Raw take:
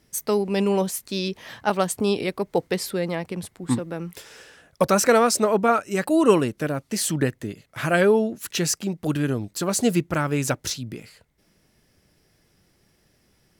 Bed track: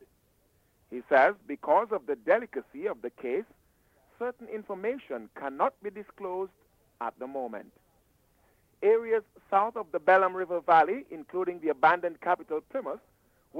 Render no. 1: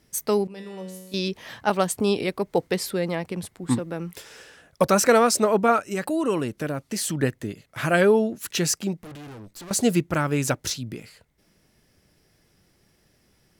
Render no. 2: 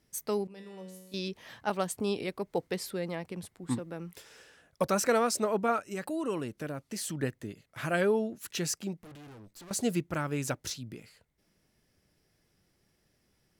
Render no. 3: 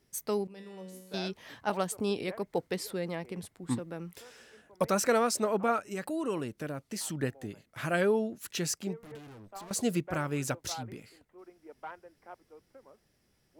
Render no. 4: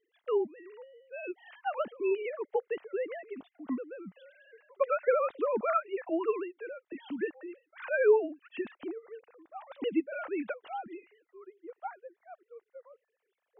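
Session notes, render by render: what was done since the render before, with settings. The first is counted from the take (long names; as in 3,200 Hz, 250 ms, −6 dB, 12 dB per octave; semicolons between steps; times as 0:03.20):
0:00.47–0:01.14: tuned comb filter 93 Hz, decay 1.3 s, mix 90%; 0:05.90–0:07.23: downward compressor 2 to 1, threshold −25 dBFS; 0:09.03–0:09.71: tube saturation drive 39 dB, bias 0.55
level −9 dB
mix in bed track −22 dB
three sine waves on the formant tracks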